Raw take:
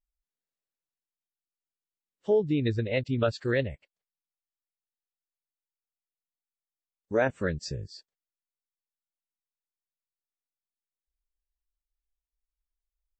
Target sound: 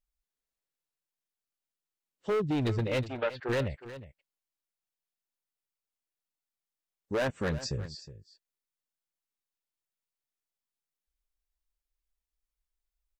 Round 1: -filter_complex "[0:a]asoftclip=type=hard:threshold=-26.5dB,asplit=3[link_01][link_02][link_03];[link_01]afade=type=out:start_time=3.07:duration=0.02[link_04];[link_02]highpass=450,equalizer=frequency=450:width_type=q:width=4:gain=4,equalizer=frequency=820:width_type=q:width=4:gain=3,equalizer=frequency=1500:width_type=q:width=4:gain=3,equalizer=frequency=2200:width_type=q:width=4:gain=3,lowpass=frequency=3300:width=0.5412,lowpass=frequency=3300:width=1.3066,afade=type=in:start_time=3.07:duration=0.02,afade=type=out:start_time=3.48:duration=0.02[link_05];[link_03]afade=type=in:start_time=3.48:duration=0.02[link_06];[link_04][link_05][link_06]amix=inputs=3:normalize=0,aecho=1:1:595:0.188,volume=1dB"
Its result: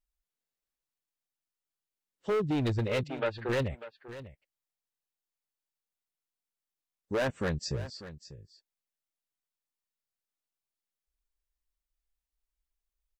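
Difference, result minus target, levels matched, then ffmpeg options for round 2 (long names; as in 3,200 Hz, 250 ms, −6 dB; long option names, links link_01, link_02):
echo 231 ms late
-filter_complex "[0:a]asoftclip=type=hard:threshold=-26.5dB,asplit=3[link_01][link_02][link_03];[link_01]afade=type=out:start_time=3.07:duration=0.02[link_04];[link_02]highpass=450,equalizer=frequency=450:width_type=q:width=4:gain=4,equalizer=frequency=820:width_type=q:width=4:gain=3,equalizer=frequency=1500:width_type=q:width=4:gain=3,equalizer=frequency=2200:width_type=q:width=4:gain=3,lowpass=frequency=3300:width=0.5412,lowpass=frequency=3300:width=1.3066,afade=type=in:start_time=3.07:duration=0.02,afade=type=out:start_time=3.48:duration=0.02[link_05];[link_03]afade=type=in:start_time=3.48:duration=0.02[link_06];[link_04][link_05][link_06]amix=inputs=3:normalize=0,aecho=1:1:364:0.188,volume=1dB"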